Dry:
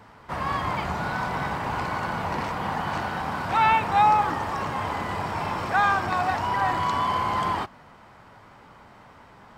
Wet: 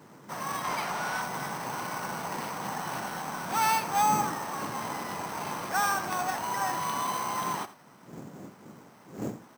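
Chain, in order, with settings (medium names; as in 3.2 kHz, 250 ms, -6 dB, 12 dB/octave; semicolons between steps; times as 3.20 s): wind noise 260 Hz -37 dBFS; high-pass 140 Hz 24 dB/octave; treble shelf 4.7 kHz +7 dB; sample-rate reducer 7.1 kHz, jitter 0%; 0.64–1.22 s: overdrive pedal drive 11 dB, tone 6.1 kHz, clips at -15.5 dBFS; on a send: delay 84 ms -15.5 dB; on the sum: trim -6.5 dB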